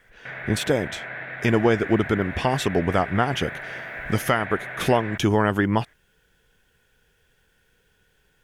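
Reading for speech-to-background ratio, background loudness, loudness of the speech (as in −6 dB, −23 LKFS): 10.5 dB, −34.0 LKFS, −23.5 LKFS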